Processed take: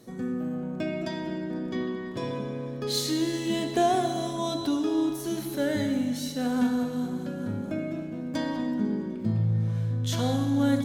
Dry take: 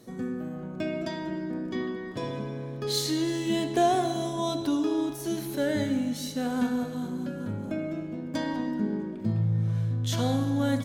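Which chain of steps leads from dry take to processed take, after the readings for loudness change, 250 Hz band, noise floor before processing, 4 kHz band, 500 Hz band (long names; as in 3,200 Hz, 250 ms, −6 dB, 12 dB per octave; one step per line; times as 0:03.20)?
+0.5 dB, +1.5 dB, −38 dBFS, +0.5 dB, 0.0 dB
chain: feedback echo with a high-pass in the loop 250 ms, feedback 77%, level −23.5 dB
four-comb reverb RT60 2 s, combs from 25 ms, DRR 10.5 dB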